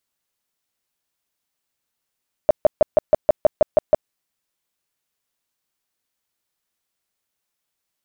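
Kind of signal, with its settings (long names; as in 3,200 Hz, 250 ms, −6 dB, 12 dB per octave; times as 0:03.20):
tone bursts 614 Hz, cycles 10, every 0.16 s, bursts 10, −7.5 dBFS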